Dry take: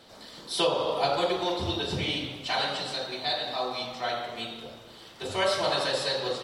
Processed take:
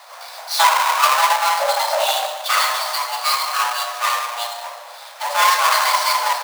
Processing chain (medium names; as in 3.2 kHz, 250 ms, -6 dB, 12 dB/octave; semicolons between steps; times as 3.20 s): square wave that keeps the level; frequency shift +480 Hz; trim +6.5 dB